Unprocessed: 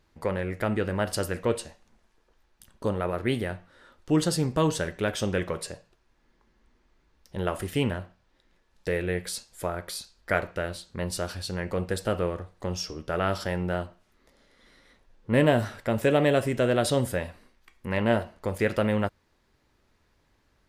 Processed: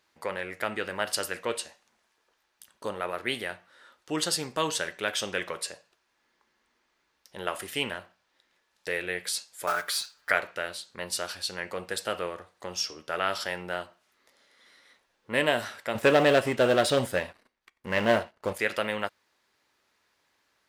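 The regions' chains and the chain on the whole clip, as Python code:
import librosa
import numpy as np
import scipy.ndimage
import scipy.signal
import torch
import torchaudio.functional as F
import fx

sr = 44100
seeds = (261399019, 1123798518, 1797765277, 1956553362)

y = fx.chain(x, sr, fx.block_float(bits=5),
    fx.peak_eq(hz=1400.0, db=8.0, octaves=0.75),
    fx.comb(ms=6.8, depth=0.9), at=(9.67, 10.32))
y = fx.chain(y, sr, fx.tilt_eq(slope=-2.0),
    fx.leveller(passes=2),
    fx.upward_expand(threshold_db=-26.0, expansion=1.5), at=(15.95, 18.53))
y = fx.highpass(y, sr, hz=1100.0, slope=6)
y = fx.dynamic_eq(y, sr, hz=3100.0, q=0.85, threshold_db=-42.0, ratio=4.0, max_db=3)
y = y * librosa.db_to_amplitude(2.5)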